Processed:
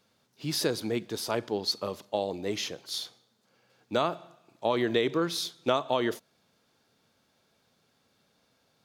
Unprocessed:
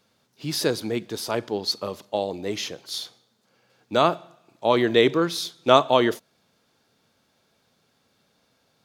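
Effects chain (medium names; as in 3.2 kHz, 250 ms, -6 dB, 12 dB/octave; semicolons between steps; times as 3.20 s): compression 6:1, threshold -19 dBFS, peak gain reduction 10 dB; trim -3 dB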